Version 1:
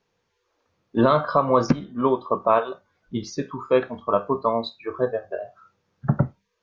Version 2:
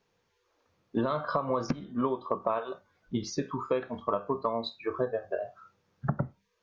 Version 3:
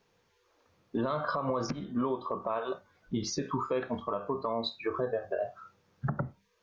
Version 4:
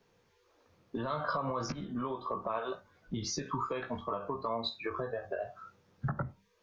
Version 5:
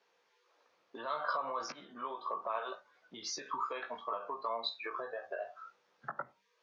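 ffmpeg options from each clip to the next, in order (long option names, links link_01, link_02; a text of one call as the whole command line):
ffmpeg -i in.wav -af "acompressor=threshold=-24dB:ratio=10,volume=-1dB" out.wav
ffmpeg -i in.wav -af "alimiter=level_in=1dB:limit=-24dB:level=0:latency=1:release=71,volume=-1dB,volume=3.5dB" out.wav
ffmpeg -i in.wav -filter_complex "[0:a]acrossover=split=110|750[link_01][link_02][link_03];[link_02]acompressor=threshold=-39dB:ratio=6[link_04];[link_03]flanger=delay=15.5:depth=3.3:speed=1.7[link_05];[link_01][link_04][link_05]amix=inputs=3:normalize=0,volume=2.5dB" out.wav
ffmpeg -i in.wav -af "highpass=620,lowpass=5900" out.wav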